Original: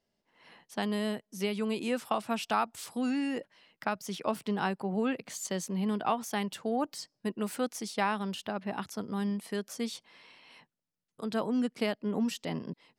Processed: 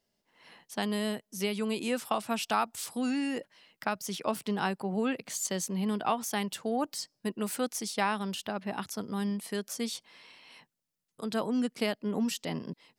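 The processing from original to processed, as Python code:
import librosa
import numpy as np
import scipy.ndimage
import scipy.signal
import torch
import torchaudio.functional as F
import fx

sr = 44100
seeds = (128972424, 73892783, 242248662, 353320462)

y = fx.high_shelf(x, sr, hz=4300.0, db=7.0)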